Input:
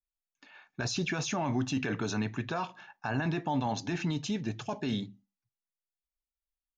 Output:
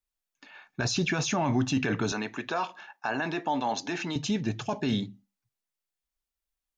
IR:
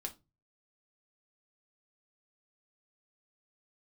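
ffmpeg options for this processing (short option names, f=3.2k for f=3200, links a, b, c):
-filter_complex "[0:a]asettb=1/sr,asplit=3[a][b][c];[a]atrim=end=2.124[d];[b]atrim=start=2.12:end=4.16,asetpts=PTS-STARTPTS,afade=t=in:d=0.004:c=qsin,afade=t=out:st=2.036:d=0.004:c=qsin,highpass=320[e];[c]atrim=start=4.156[f];[d][e]acrossfade=d=0.004:c1=hsin:c2=qsin[g];[g][f]acrossfade=d=0.004:c1=qsin:c2=hsin,volume=4.5dB"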